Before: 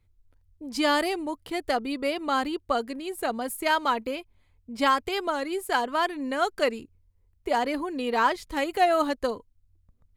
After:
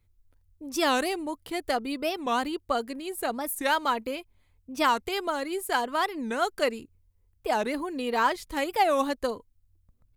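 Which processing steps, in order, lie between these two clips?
high-shelf EQ 8,600 Hz +7.5 dB
wow of a warped record 45 rpm, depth 250 cents
level −1.5 dB

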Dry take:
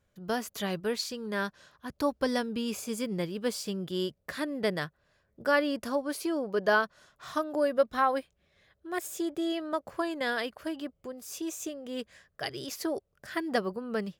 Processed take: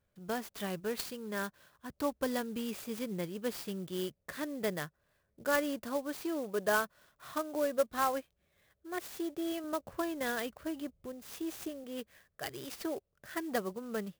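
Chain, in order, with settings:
0:09.64–0:11.84: low-shelf EQ 170 Hz +10.5 dB
converter with an unsteady clock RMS 0.038 ms
level −5 dB

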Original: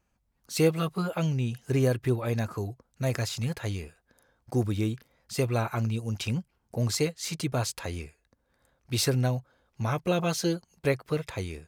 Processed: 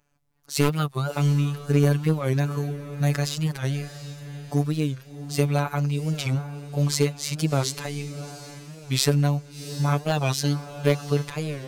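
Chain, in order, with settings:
wavefolder on the positive side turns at −18 dBFS
phases set to zero 144 Hz
on a send: feedback delay with all-pass diffusion 714 ms, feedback 41%, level −12.5 dB
on the sum: wow of a warped record 45 rpm, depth 160 cents
level +6 dB

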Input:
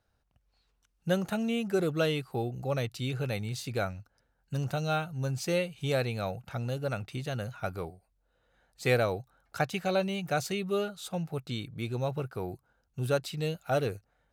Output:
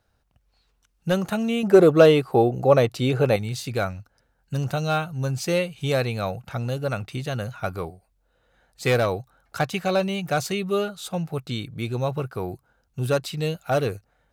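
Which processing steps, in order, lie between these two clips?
dynamic equaliser 1,100 Hz, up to +5 dB, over −56 dBFS, Q 7.1
gain into a clipping stage and back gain 20.5 dB
0:01.63–0:03.36: parametric band 540 Hz +10.5 dB 2.7 octaves
level +6 dB

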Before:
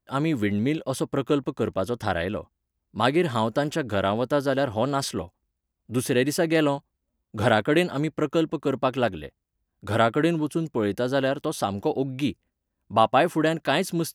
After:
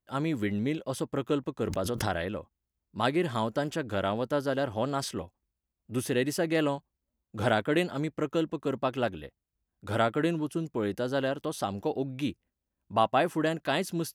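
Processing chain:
0:01.64–0:02.29: background raised ahead of every attack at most 28 dB per second
level −5.5 dB

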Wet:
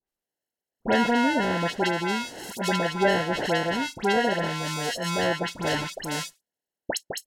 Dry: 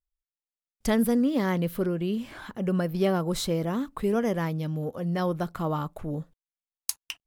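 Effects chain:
decimation without filtering 37×
RIAA equalisation recording
all-pass dispersion highs, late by 79 ms, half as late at 2,000 Hz
treble cut that deepens with the level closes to 2,000 Hz, closed at −21.5 dBFS
level +6 dB

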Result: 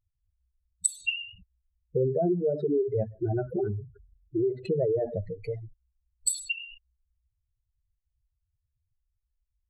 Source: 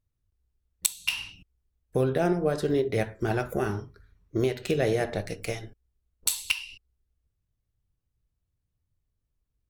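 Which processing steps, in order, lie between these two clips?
expanding power law on the bin magnitudes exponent 3.5
0:04.57–0:06.58: parametric band 2,400 Hz −12.5 dB 0.25 octaves

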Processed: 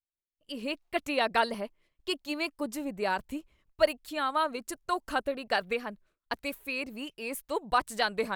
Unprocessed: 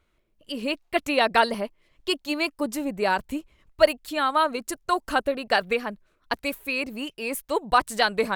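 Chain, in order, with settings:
downward expander −51 dBFS
level −6.5 dB

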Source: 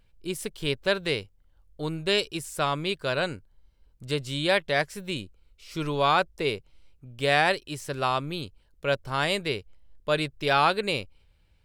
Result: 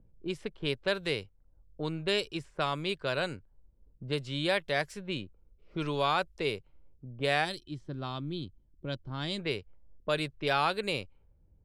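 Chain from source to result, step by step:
gain on a spectral selection 0:07.45–0:09.39, 380–3,000 Hz −12 dB
low-pass that shuts in the quiet parts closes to 360 Hz, open at −23.5 dBFS
multiband upward and downward compressor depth 40%
level −4.5 dB

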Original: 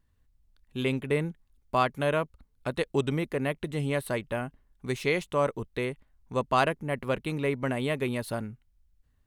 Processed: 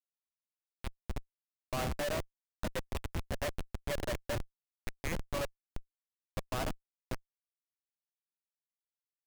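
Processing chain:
source passing by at 0:03.51, 5 m/s, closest 6.7 metres
Chebyshev high-pass filter 520 Hz, order 8
steady tone 4,900 Hz −59 dBFS
repeating echo 118 ms, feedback 18%, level −11 dB
on a send at −6.5 dB: convolution reverb RT60 0.55 s, pre-delay 3 ms
on the sum: comparator with hysteresis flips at −29.5 dBFS
level +4.5 dB

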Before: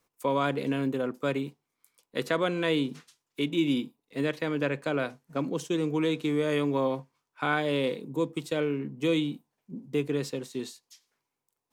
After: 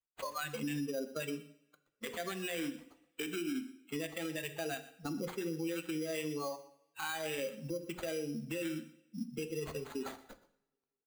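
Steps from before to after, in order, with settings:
spectral dynamics exaggerated over time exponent 1.5
downward compressor 6 to 1, threshold −42 dBFS, peak gain reduction 18.5 dB
dynamic equaliser 1,200 Hz, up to +6 dB, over −59 dBFS, Q 0.99
noise reduction from a noise print of the clip's start 20 dB
thirty-one-band graphic EQ 1,250 Hz −6 dB, 2,500 Hz +6 dB, 8,000 Hz −9 dB
on a send: single-tap delay 130 ms −19 dB
on the sum: speed change +6%
sample-rate reduction 5,400 Hz, jitter 0%
mains-hum notches 60/120/180/240/300/360/420/480 Hz
coupled-rooms reverb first 0.71 s, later 2.3 s, from −28 dB, DRR 11.5 dB
brickwall limiter −38.5 dBFS, peak gain reduction 12.5 dB
level +9 dB

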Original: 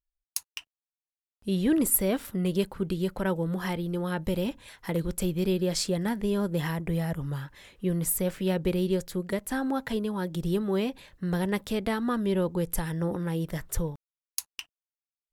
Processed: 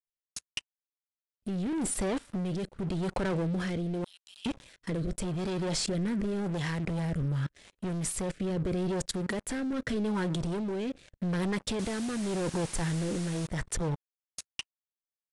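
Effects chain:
0:04.04–0:04.46: Butterworth high-pass 2,600 Hz 96 dB per octave
leveller curve on the samples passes 5
output level in coarse steps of 23 dB
rotating-speaker cabinet horn 0.85 Hz
0:11.79–0:13.47: bit-depth reduction 6 bits, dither triangular
downsampling to 22,050 Hz
level −6 dB

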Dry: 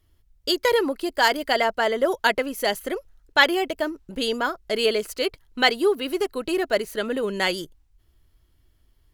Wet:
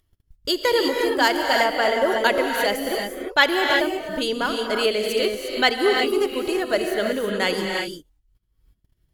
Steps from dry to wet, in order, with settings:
noise gate −53 dBFS, range −51 dB
reverb whose tail is shaped and stops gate 380 ms rising, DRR 2 dB
upward compression, threshold −37 dBFS

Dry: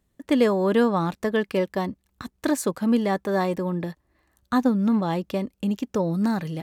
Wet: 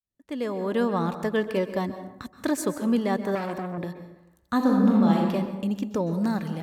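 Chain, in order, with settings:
fade in at the beginning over 1.06 s
dense smooth reverb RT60 0.91 s, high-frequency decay 0.5×, pre-delay 115 ms, DRR 10 dB
0:03.35–0:03.78: saturating transformer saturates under 1,200 Hz
0:04.56–0:05.30: thrown reverb, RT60 1.1 s, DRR −1.5 dB
level −2.5 dB

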